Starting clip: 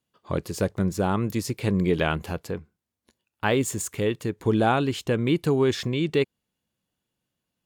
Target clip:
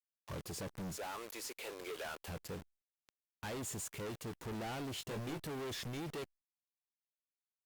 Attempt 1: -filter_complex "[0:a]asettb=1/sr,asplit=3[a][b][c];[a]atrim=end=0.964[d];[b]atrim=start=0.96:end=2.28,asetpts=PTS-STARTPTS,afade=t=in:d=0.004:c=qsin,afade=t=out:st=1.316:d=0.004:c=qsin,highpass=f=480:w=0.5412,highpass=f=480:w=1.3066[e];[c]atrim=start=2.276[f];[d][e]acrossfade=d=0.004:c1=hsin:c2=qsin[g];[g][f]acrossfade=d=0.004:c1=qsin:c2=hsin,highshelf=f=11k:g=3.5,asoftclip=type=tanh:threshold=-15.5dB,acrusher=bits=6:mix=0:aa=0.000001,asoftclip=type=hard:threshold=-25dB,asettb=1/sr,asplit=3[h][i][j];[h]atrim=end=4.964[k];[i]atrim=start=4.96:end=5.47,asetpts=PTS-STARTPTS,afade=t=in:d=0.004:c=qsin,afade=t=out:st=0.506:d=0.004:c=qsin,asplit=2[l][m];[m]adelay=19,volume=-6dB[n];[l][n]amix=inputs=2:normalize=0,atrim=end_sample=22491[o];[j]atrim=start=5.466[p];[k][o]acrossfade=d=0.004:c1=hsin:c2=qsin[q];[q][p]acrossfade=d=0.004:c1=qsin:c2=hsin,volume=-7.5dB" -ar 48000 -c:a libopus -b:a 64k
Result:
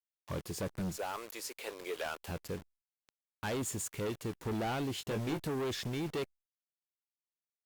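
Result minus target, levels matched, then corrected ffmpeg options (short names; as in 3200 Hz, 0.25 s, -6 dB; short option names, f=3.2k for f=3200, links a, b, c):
hard clip: distortion -5 dB
-filter_complex "[0:a]asettb=1/sr,asplit=3[a][b][c];[a]atrim=end=0.964[d];[b]atrim=start=0.96:end=2.28,asetpts=PTS-STARTPTS,afade=t=in:d=0.004:c=qsin,afade=t=out:st=1.316:d=0.004:c=qsin,highpass=f=480:w=0.5412,highpass=f=480:w=1.3066[e];[c]atrim=start=2.276[f];[d][e]acrossfade=d=0.004:c1=hsin:c2=qsin[g];[g][f]acrossfade=d=0.004:c1=qsin:c2=hsin,highshelf=f=11k:g=3.5,asoftclip=type=tanh:threshold=-15.5dB,acrusher=bits=6:mix=0:aa=0.000001,asoftclip=type=hard:threshold=-33dB,asettb=1/sr,asplit=3[h][i][j];[h]atrim=end=4.964[k];[i]atrim=start=4.96:end=5.47,asetpts=PTS-STARTPTS,afade=t=in:d=0.004:c=qsin,afade=t=out:st=0.506:d=0.004:c=qsin,asplit=2[l][m];[m]adelay=19,volume=-6dB[n];[l][n]amix=inputs=2:normalize=0,atrim=end_sample=22491[o];[j]atrim=start=5.466[p];[k][o]acrossfade=d=0.004:c1=hsin:c2=qsin[q];[q][p]acrossfade=d=0.004:c1=qsin:c2=hsin,volume=-7.5dB" -ar 48000 -c:a libopus -b:a 64k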